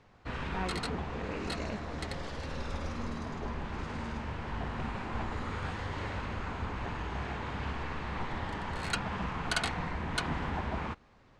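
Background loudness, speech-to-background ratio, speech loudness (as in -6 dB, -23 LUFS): -37.0 LUFS, -5.0 dB, -42.0 LUFS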